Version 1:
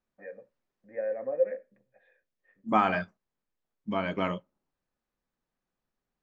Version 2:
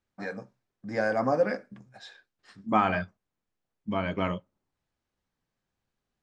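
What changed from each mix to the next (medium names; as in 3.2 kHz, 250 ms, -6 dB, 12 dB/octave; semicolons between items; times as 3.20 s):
first voice: remove cascade formant filter e; master: add peaking EQ 88 Hz +9.5 dB 1 oct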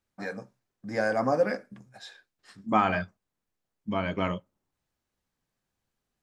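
master: remove distance through air 61 m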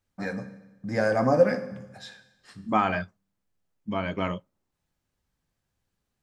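first voice: remove high-pass 240 Hz 6 dB/octave; reverb: on, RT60 1.0 s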